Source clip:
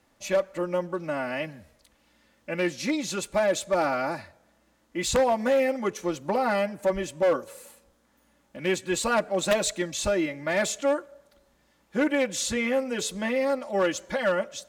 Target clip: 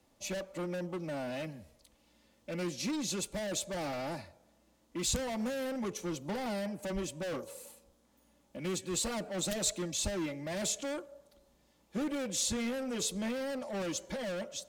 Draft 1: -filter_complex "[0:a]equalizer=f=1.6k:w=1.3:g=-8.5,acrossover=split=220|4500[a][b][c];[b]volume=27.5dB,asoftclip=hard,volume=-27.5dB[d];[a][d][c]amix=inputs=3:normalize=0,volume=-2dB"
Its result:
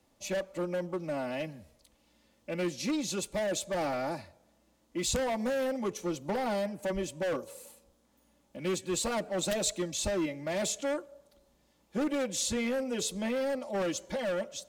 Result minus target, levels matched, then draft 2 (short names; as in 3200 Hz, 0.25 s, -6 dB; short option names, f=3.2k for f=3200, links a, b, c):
overloaded stage: distortion -4 dB
-filter_complex "[0:a]equalizer=f=1.6k:w=1.3:g=-8.5,acrossover=split=220|4500[a][b][c];[b]volume=35dB,asoftclip=hard,volume=-35dB[d];[a][d][c]amix=inputs=3:normalize=0,volume=-2dB"